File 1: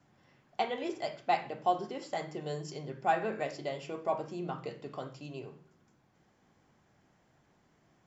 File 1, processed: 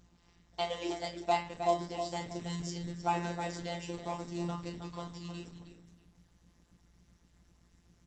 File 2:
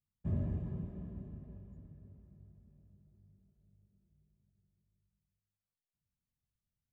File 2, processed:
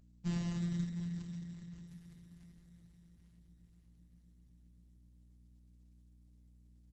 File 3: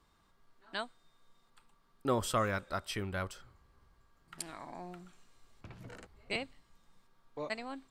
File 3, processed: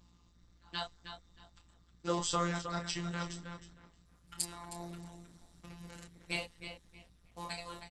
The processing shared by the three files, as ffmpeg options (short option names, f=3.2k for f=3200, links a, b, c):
-filter_complex "[0:a]bandreject=f=650:w=13,acrossover=split=620[a][b];[a]acrusher=bits=4:mode=log:mix=0:aa=0.000001[c];[b]equalizer=f=1.9k:t=o:w=0.34:g=-6.5[d];[c][d]amix=inputs=2:normalize=0,afftfilt=real='hypot(re,im)*cos(PI*b)':imag='0':win_size=1024:overlap=0.75,aeval=exprs='val(0)+0.000708*(sin(2*PI*60*n/s)+sin(2*PI*2*60*n/s)/2+sin(2*PI*3*60*n/s)/3+sin(2*PI*4*60*n/s)/4+sin(2*PI*5*60*n/s)/5)':c=same,aeval=exprs='0.168*(cos(1*acos(clip(val(0)/0.168,-1,1)))-cos(1*PI/2))+0.0075*(cos(3*acos(clip(val(0)/0.168,-1,1)))-cos(3*PI/2))+0.0119*(cos(5*acos(clip(val(0)/0.168,-1,1)))-cos(5*PI/2))+0.00422*(cos(7*acos(clip(val(0)/0.168,-1,1)))-cos(7*PI/2))':c=same,highshelf=f=4.7k:g=12,asplit=2[e][f];[f]adelay=28,volume=-6dB[g];[e][g]amix=inputs=2:normalize=0,asplit=2[h][i];[i]adelay=314,lowpass=f=4.5k:p=1,volume=-8dB,asplit=2[j][k];[k]adelay=314,lowpass=f=4.5k:p=1,volume=0.27,asplit=2[l][m];[m]adelay=314,lowpass=f=4.5k:p=1,volume=0.27[n];[j][l][n]amix=inputs=3:normalize=0[o];[h][o]amix=inputs=2:normalize=0,volume=2dB" -ar 48000 -c:a libopus -b:a 12k